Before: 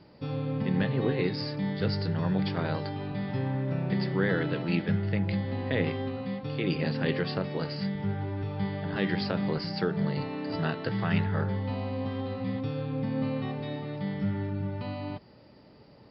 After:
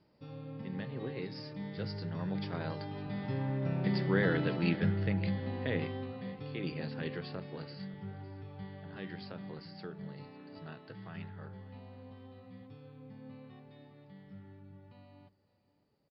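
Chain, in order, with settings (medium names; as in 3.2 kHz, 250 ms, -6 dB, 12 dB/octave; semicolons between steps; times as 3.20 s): Doppler pass-by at 4.37 s, 6 m/s, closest 6.5 m; delay 556 ms -20 dB; trim -2 dB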